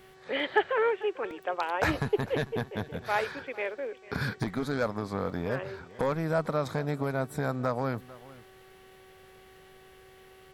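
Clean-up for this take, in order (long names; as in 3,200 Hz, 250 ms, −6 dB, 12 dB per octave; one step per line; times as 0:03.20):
click removal
hum removal 377.9 Hz, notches 22
echo removal 446 ms −20 dB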